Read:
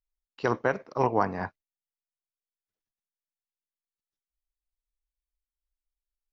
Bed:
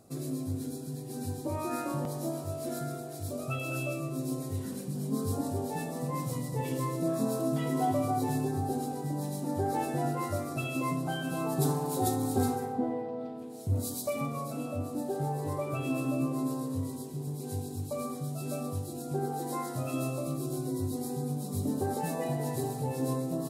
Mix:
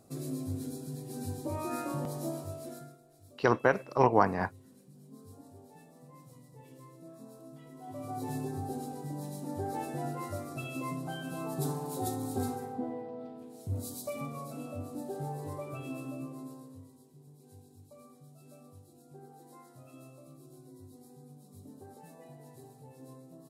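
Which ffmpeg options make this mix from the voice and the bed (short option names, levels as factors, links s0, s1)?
-filter_complex "[0:a]adelay=3000,volume=1.12[s0];[1:a]volume=4.47,afade=t=out:st=2.31:d=0.66:silence=0.11885,afade=t=in:st=7.83:d=0.51:silence=0.177828,afade=t=out:st=15.35:d=1.55:silence=0.199526[s1];[s0][s1]amix=inputs=2:normalize=0"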